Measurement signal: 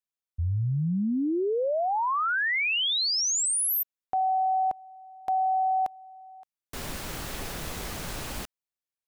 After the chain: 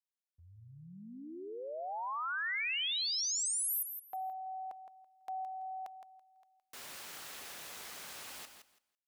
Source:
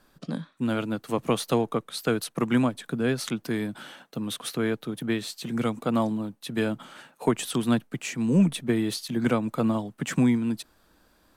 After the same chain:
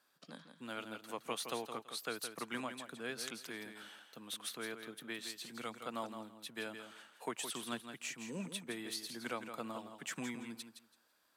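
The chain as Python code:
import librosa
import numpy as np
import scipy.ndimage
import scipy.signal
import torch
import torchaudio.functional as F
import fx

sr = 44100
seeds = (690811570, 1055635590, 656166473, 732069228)

y = fx.highpass(x, sr, hz=1200.0, slope=6)
y = fx.echo_feedback(y, sr, ms=166, feedback_pct=19, wet_db=-8.5)
y = y * 10.0 ** (-8.5 / 20.0)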